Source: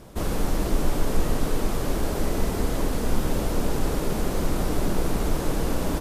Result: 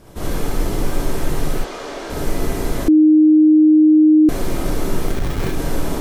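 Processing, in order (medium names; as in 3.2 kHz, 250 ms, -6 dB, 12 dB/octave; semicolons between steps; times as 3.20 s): wavefolder -16.5 dBFS; 1.57–2.10 s: three-band isolator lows -23 dB, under 340 Hz, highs -22 dB, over 7.1 kHz; 5.07–5.52 s: Schmitt trigger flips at -27 dBFS; gated-style reverb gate 90 ms rising, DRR -3.5 dB; 2.88–4.29 s: bleep 309 Hz -6 dBFS; trim -1 dB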